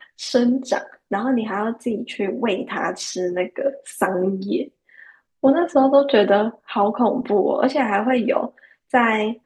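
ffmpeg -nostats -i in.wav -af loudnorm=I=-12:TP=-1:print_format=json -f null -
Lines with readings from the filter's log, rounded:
"input_i" : "-20.5",
"input_tp" : "-2.5",
"input_lra" : "5.5",
"input_thresh" : "-30.8",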